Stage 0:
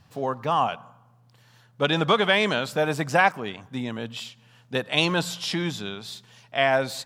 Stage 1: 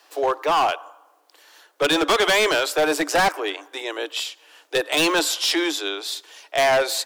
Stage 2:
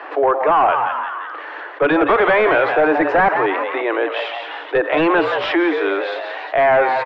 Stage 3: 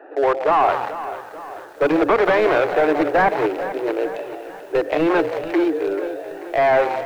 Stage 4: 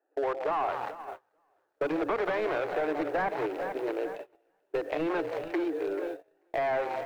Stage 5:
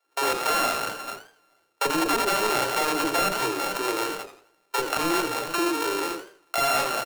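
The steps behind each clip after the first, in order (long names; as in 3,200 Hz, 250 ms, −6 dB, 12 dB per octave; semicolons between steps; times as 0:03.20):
Chebyshev high-pass filter 290 Hz, order 10; high-shelf EQ 5,800 Hz +6.5 dB; hard clipping −22.5 dBFS, distortion −7 dB; level +7.5 dB
low-pass filter 2,000 Hz 24 dB per octave; on a send: echo with shifted repeats 174 ms, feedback 38%, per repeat +120 Hz, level −10.5 dB; on the sum: envelope flattener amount 50%; level +4 dB
adaptive Wiener filter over 41 samples; mains-hum notches 50/100/150/200/250/300 Hz; feedback echo at a low word length 438 ms, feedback 55%, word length 7 bits, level −13 dB
noise gate −26 dBFS, range −30 dB; downward compressor 2.5 to 1, threshold −23 dBFS, peak gain reduction 7.5 dB; level −6.5 dB
samples sorted by size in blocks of 32 samples; multiband delay without the direct sound highs, lows 40 ms, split 550 Hz; feedback echo with a swinging delay time 83 ms, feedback 34%, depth 167 cents, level −12 dB; level +6 dB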